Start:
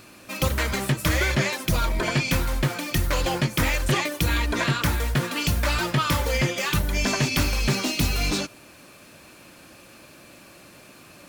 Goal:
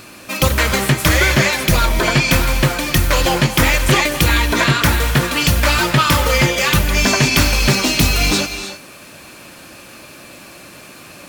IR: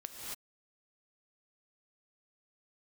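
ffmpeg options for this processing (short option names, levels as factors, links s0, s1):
-filter_complex "[0:a]asplit=2[s0][s1];[s1]lowshelf=f=390:g=-11.5[s2];[1:a]atrim=start_sample=2205,asetrate=38808,aresample=44100[s3];[s2][s3]afir=irnorm=-1:irlink=0,volume=0.668[s4];[s0][s4]amix=inputs=2:normalize=0,volume=2.24"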